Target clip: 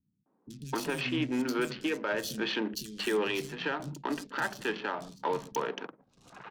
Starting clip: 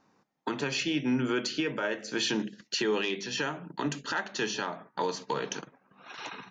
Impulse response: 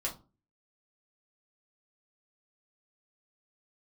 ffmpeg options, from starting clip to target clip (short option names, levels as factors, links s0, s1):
-filter_complex "[0:a]adynamicsmooth=sensitivity=7:basefreq=660,acrossover=split=200|4300[s0][s1][s2];[s2]adelay=30[s3];[s1]adelay=260[s4];[s0][s4][s3]amix=inputs=3:normalize=0"